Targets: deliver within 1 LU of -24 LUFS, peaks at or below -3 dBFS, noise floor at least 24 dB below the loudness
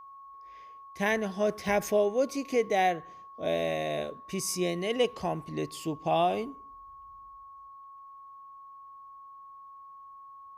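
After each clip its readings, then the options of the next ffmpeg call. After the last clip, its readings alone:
steady tone 1100 Hz; tone level -46 dBFS; loudness -29.5 LUFS; peak -15.0 dBFS; loudness target -24.0 LUFS
-> -af "bandreject=f=1.1k:w=30"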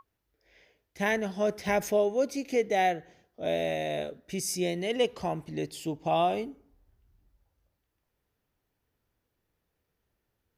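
steady tone none; loudness -29.5 LUFS; peak -15.0 dBFS; loudness target -24.0 LUFS
-> -af "volume=5.5dB"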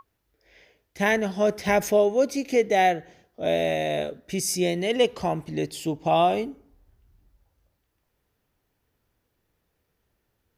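loudness -24.0 LUFS; peak -9.5 dBFS; noise floor -76 dBFS

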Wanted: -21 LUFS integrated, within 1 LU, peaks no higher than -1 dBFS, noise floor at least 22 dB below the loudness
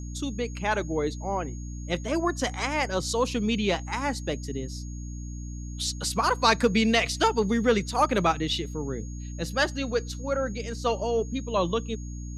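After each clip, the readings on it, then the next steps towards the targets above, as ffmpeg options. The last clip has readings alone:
hum 60 Hz; harmonics up to 300 Hz; hum level -34 dBFS; steady tone 6600 Hz; tone level -48 dBFS; loudness -27.0 LUFS; peak -7.5 dBFS; loudness target -21.0 LUFS
-> -af "bandreject=f=60:t=h:w=6,bandreject=f=120:t=h:w=6,bandreject=f=180:t=h:w=6,bandreject=f=240:t=h:w=6,bandreject=f=300:t=h:w=6"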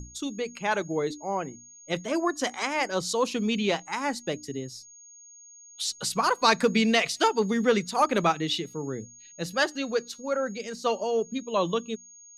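hum none; steady tone 6600 Hz; tone level -48 dBFS
-> -af "bandreject=f=6.6k:w=30"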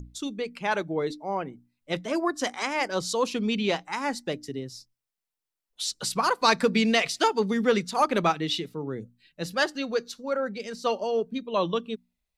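steady tone none; loudness -27.5 LUFS; peak -8.0 dBFS; loudness target -21.0 LUFS
-> -af "volume=6.5dB"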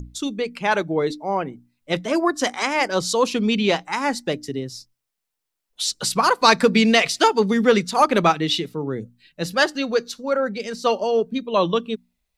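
loudness -21.0 LUFS; peak -1.5 dBFS; noise floor -81 dBFS

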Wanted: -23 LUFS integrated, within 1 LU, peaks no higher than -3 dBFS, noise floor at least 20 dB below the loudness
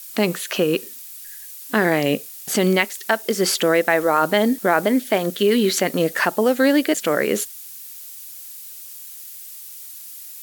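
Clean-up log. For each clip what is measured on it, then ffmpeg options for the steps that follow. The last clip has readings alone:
noise floor -38 dBFS; noise floor target -40 dBFS; loudness -19.5 LUFS; peak -3.0 dBFS; loudness target -23.0 LUFS
-> -af "afftdn=nr=6:nf=-38"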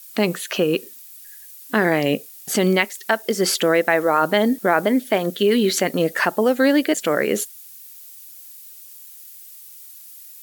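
noise floor -42 dBFS; loudness -19.5 LUFS; peak -3.5 dBFS; loudness target -23.0 LUFS
-> -af "volume=-3.5dB"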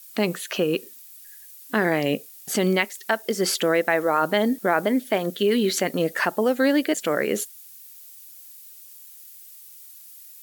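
loudness -23.0 LUFS; peak -7.0 dBFS; noise floor -46 dBFS

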